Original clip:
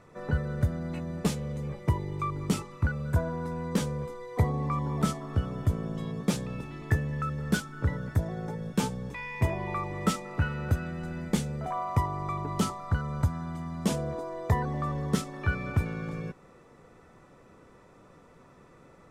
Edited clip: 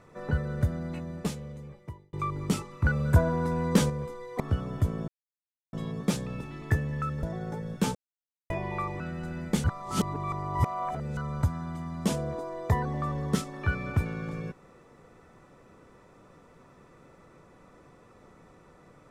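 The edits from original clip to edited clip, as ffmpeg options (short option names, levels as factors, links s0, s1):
-filter_complex "[0:a]asplit=12[s0][s1][s2][s3][s4][s5][s6][s7][s8][s9][s10][s11];[s0]atrim=end=2.13,asetpts=PTS-STARTPTS,afade=t=out:st=0.78:d=1.35[s12];[s1]atrim=start=2.13:end=2.862,asetpts=PTS-STARTPTS,afade=t=in:d=0.004:c=hsin[s13];[s2]atrim=start=2.858:end=3.902,asetpts=PTS-STARTPTS,volume=1.88[s14];[s3]atrim=start=3.898:end=4.402[s15];[s4]atrim=start=5.248:end=5.93,asetpts=PTS-STARTPTS,afade=t=out:st=0.678:d=0.004:c=hsin,apad=pad_dur=0.65[s16];[s5]atrim=start=5.93:end=7.432,asetpts=PTS-STARTPTS,afade=t=in:d=0.004:c=hsin[s17];[s6]atrim=start=8.188:end=8.91,asetpts=PTS-STARTPTS,afade=t=out:st=0.718:d=0.004:c=hsin[s18];[s7]atrim=start=8.91:end=9.46,asetpts=PTS-STARTPTS,volume=0[s19];[s8]atrim=start=9.46:end=9.962,asetpts=PTS-STARTPTS,afade=t=in:d=0.004:c=hsin[s20];[s9]atrim=start=10.798:end=11.442[s21];[s10]atrim=start=11.438:end=12.972,asetpts=PTS-STARTPTS,areverse[s22];[s11]atrim=start=12.968[s23];[s12][s13]concat=n=2:v=0:a=1[s24];[s24][s14]acrossfade=d=0.004:c1=hsin:c2=hsin[s25];[s25][s15]acrossfade=d=0.004:c1=hsin:c2=hsin[s26];[s16][s17]concat=n=2:v=0:a=1[s27];[s26][s27]acrossfade=d=0.004:c1=hsin:c2=hsin[s28];[s18][s19][s20]concat=n=3:v=0:a=1[s29];[s28][s29]acrossfade=d=0.004:c1=hsin:c2=hsin[s30];[s30][s21]acrossfade=d=0.004:c1=hsin:c2=hsin[s31];[s31][s22]acrossfade=d=0.004:c1=hsin:c2=hsin[s32];[s32][s23]acrossfade=d=0.004:c1=hsin:c2=hsin"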